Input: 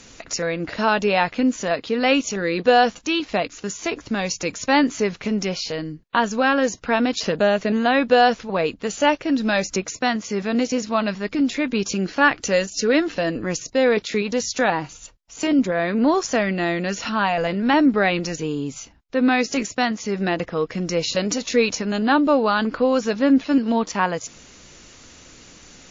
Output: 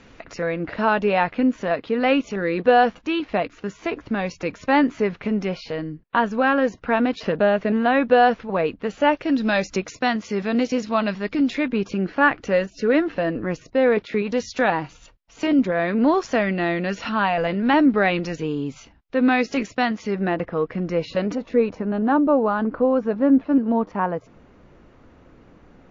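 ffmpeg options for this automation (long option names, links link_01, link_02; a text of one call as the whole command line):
ffmpeg -i in.wav -af "asetnsamples=nb_out_samples=441:pad=0,asendcmd='9.17 lowpass f 4000;11.68 lowpass f 2100;14.27 lowpass f 3300;20.15 lowpass f 1900;21.35 lowpass f 1100',lowpass=2300" out.wav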